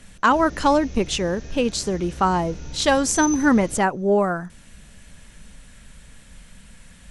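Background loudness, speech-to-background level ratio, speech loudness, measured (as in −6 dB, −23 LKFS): −35.5 LKFS, 14.5 dB, −21.0 LKFS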